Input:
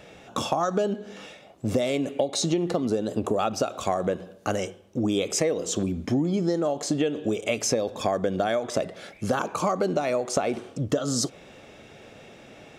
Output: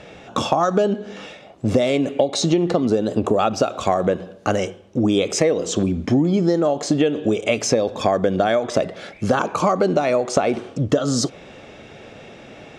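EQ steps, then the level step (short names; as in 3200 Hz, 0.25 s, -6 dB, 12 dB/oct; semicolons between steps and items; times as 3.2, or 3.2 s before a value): air absorption 59 m; +7.0 dB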